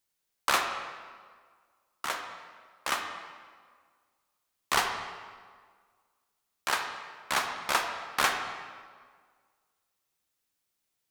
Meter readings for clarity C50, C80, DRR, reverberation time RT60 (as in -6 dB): 5.5 dB, 7.0 dB, 4.5 dB, 1.7 s